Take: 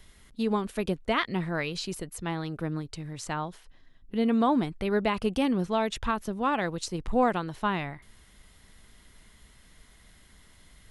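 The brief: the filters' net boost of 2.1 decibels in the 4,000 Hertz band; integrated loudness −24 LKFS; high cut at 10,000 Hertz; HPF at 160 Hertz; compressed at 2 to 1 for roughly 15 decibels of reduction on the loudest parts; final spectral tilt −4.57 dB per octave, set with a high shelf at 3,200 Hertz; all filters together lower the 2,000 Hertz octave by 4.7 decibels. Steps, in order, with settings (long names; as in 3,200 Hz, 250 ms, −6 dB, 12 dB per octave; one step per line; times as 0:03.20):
high-pass filter 160 Hz
low-pass filter 10,000 Hz
parametric band 2,000 Hz −8 dB
high-shelf EQ 3,200 Hz +3.5 dB
parametric band 4,000 Hz +3 dB
downward compressor 2 to 1, threshold −49 dBFS
level +19 dB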